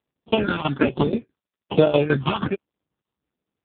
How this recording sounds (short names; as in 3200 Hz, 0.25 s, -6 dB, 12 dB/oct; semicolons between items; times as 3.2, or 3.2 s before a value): aliases and images of a low sample rate 2000 Hz, jitter 0%; tremolo saw down 6.2 Hz, depth 85%; phasing stages 6, 1.2 Hz, lowest notch 470–1900 Hz; AMR-NB